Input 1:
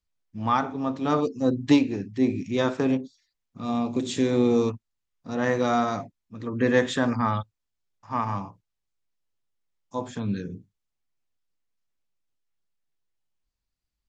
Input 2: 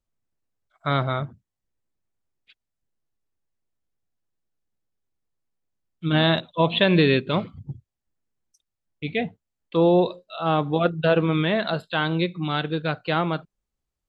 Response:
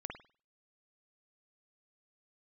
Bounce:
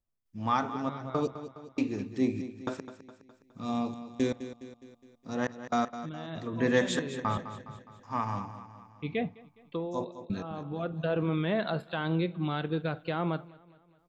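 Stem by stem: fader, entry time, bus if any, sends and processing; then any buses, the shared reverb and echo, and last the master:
−5.5 dB, 0.00 s, send −15.5 dB, echo send −11.5 dB, gate pattern "..xxxxx..x.." 118 BPM −60 dB
−4.0 dB, 0.00 s, send −19 dB, echo send −22.5 dB, high-shelf EQ 2,200 Hz −11 dB; brickwall limiter −17 dBFS, peak gain reduction 8.5 dB; automatic ducking −12 dB, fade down 0.25 s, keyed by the first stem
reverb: on, pre-delay 49 ms
echo: repeating echo 207 ms, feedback 52%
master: high-shelf EQ 6,500 Hz +8 dB

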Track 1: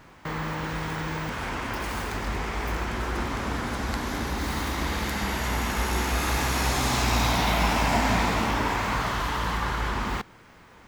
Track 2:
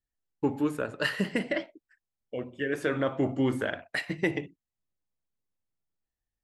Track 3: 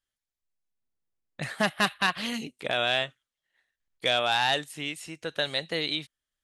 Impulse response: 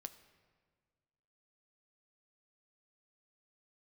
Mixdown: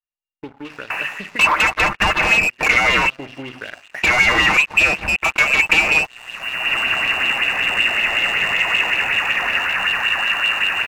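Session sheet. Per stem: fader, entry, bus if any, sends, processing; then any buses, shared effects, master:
−4.0 dB, 0.65 s, bus A, no send, downward compressor 3 to 1, threshold −29 dBFS, peak gain reduction 8.5 dB; automatic ducking −21 dB, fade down 0.50 s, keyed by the third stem
−13.5 dB, 0.00 s, no bus, no send, high shelf with overshoot 3,400 Hz −14 dB, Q 3; downward compressor 4 to 1, threshold −28 dBFS, peak gain reduction 9 dB
−3.5 dB, 0.00 s, bus A, no send, phase distortion by the signal itself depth 0.65 ms; comb filter 6.9 ms, depth 59%; leveller curve on the samples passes 5
bus A: 0.0 dB, voice inversion scrambler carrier 2,800 Hz; downward compressor 4 to 1, threshold −25 dBFS, peak gain reduction 7.5 dB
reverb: not used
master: high-shelf EQ 3,000 Hz +4 dB; leveller curve on the samples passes 3; auto-filter bell 5.3 Hz 750–3,700 Hz +9 dB

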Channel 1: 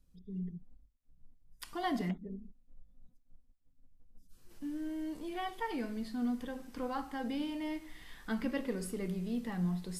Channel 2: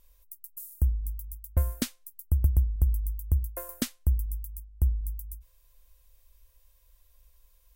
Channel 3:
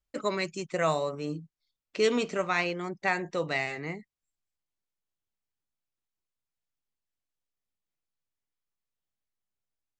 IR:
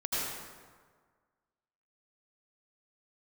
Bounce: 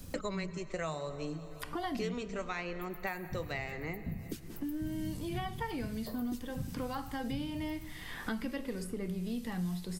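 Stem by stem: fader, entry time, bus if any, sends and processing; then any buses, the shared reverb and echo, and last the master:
−2.5 dB, 0.00 s, no send, no echo send, parametric band 83 Hz +14 dB 0.39 octaves
−13.0 dB, 2.50 s, send −22 dB, echo send −14.5 dB, expanding power law on the bin magnitudes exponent 1.7; brickwall limiter −21 dBFS, peak gain reduction 7.5 dB; random phases in short frames
−9.5 dB, 0.00 s, send −22.5 dB, echo send −22 dB, no processing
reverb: on, RT60 1.6 s, pre-delay 73 ms
echo: repeating echo 179 ms, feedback 58%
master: high-shelf EQ 9,800 Hz +4 dB; multiband upward and downward compressor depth 100%

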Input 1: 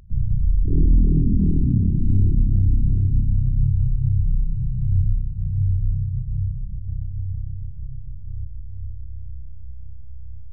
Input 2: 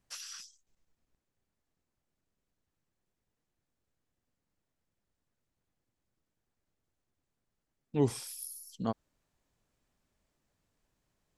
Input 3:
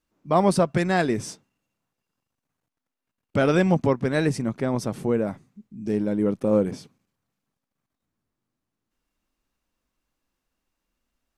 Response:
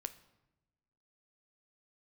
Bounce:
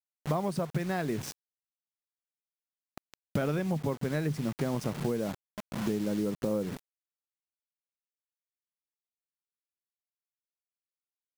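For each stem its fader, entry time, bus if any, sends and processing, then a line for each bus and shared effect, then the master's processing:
−18.0 dB, 1.70 s, no send, high-pass filter 230 Hz 24 dB per octave
muted
+1.5 dB, 0.00 s, no send, adaptive Wiener filter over 9 samples; high-shelf EQ 9,600 Hz −6 dB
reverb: not used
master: parametric band 150 Hz +8.5 dB 0.21 octaves; bit reduction 6 bits; downward compressor 10 to 1, threshold −27 dBFS, peak gain reduction 15.5 dB

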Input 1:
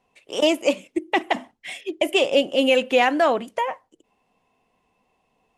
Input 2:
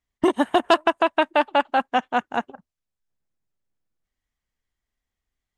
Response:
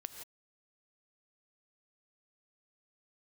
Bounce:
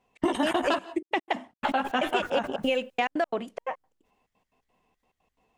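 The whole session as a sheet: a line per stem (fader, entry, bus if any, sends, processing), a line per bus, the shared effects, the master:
−2.5 dB, 0.00 s, no send, high-shelf EQ 7,300 Hz −8.5 dB; gate pattern "xx.x.x.x" 176 BPM −60 dB
+2.0 dB, 0.00 s, muted 0:00.79–0:01.63, send −11.5 dB, flanger 1.4 Hz, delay 9.5 ms, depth 6.3 ms, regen +3%; level that may fall only so fast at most 93 dB per second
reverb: on, pre-delay 3 ms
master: downward compressor 4 to 1, threshold −23 dBFS, peak gain reduction 9 dB

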